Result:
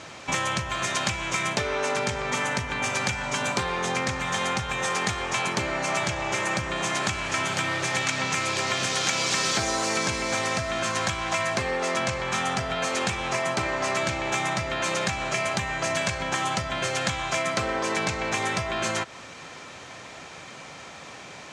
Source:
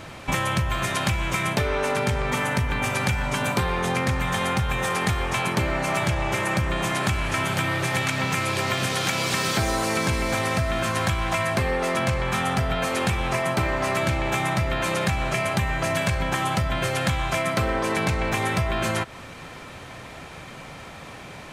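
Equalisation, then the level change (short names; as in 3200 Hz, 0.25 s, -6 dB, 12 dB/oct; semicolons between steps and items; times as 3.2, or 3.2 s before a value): HPF 56 Hz; synth low-pass 6700 Hz, resonance Q 2.1; low shelf 170 Hz -10.5 dB; -1.5 dB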